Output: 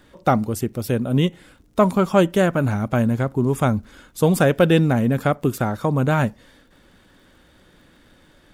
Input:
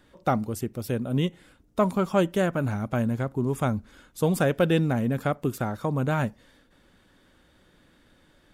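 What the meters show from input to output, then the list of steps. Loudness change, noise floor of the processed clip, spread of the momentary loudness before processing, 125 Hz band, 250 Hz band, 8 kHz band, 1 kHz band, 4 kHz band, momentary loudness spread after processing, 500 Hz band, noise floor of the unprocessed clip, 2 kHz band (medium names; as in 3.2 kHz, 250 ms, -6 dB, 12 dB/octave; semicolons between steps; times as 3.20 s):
+6.5 dB, -55 dBFS, 7 LU, +6.5 dB, +6.5 dB, +6.5 dB, +6.5 dB, +6.5 dB, 7 LU, +6.5 dB, -61 dBFS, +6.5 dB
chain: crackle 76 per s -57 dBFS; trim +6.5 dB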